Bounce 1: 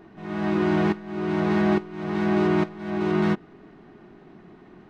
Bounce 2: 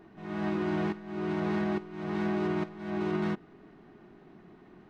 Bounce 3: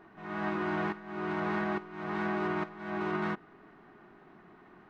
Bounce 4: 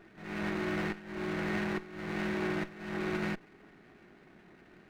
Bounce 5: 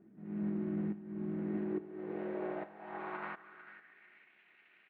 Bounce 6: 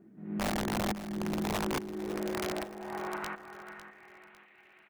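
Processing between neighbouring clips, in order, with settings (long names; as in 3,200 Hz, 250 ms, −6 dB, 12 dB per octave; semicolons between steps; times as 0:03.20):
brickwall limiter −17 dBFS, peak gain reduction 5.5 dB; level −5.5 dB
parametric band 1,300 Hz +11 dB 2.1 octaves; level −5.5 dB
lower of the sound and its delayed copy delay 0.48 ms
inverse Chebyshev low-pass filter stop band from 8,500 Hz, stop band 50 dB; repeating echo 447 ms, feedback 30%, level −15.5 dB; band-pass filter sweep 220 Hz → 2,500 Hz, 0:01.29–0:04.34; level +3 dB
wrap-around overflow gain 30.5 dB; repeating echo 552 ms, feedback 37%, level −13 dB; level +4 dB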